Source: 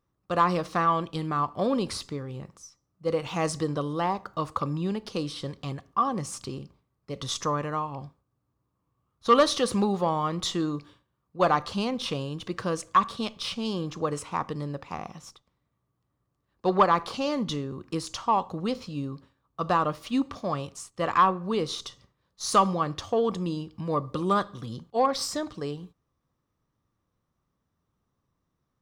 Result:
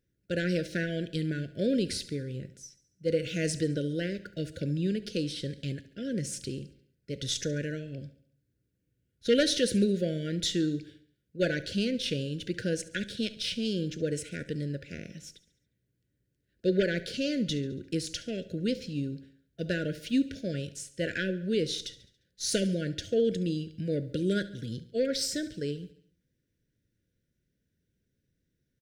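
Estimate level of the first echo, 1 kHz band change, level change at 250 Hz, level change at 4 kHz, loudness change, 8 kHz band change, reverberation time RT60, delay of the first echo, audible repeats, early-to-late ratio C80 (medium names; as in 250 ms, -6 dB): -17.5 dB, -27.5 dB, 0.0 dB, 0.0 dB, -3.5 dB, 0.0 dB, no reverb, 70 ms, 4, no reverb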